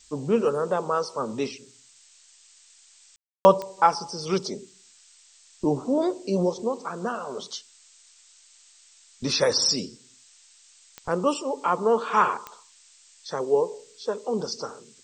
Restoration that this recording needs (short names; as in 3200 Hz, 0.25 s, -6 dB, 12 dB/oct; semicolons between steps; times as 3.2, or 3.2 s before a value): de-click; room tone fill 3.16–3.45; noise print and reduce 15 dB